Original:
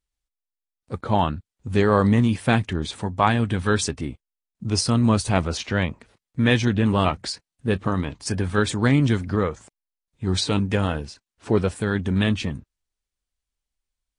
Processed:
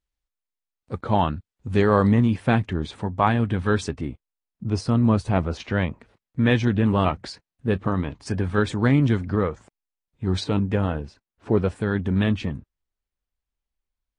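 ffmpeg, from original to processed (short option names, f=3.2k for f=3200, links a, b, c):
-af "asetnsamples=n=441:p=0,asendcmd='2.12 lowpass f 1900;4.64 lowpass f 1200;5.6 lowpass f 2100;10.44 lowpass f 1200;11.63 lowpass f 1900',lowpass=f=4k:p=1"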